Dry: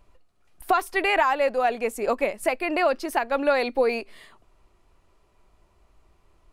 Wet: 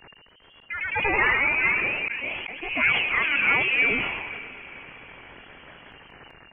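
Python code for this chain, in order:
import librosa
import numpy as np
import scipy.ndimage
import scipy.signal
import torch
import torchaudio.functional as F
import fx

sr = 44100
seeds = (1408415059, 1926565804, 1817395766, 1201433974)

y = x + 0.5 * 10.0 ** (-20.5 / 20.0) * np.diff(np.sign(x), prepend=np.sign(x[:1]))
y = fx.highpass(y, sr, hz=290.0, slope=12, at=(0.72, 2.16))
y = fx.freq_invert(y, sr, carrier_hz=2800)
y = fx.echo_diffused(y, sr, ms=505, feedback_pct=45, wet_db=-14.5)
y = fx.echo_pitch(y, sr, ms=145, semitones=1, count=3, db_per_echo=-3.0)
y = fx.auto_swell(y, sr, attack_ms=404.0)
y = fx.sustainer(y, sr, db_per_s=36.0)
y = y * 10.0 ** (-3.0 / 20.0)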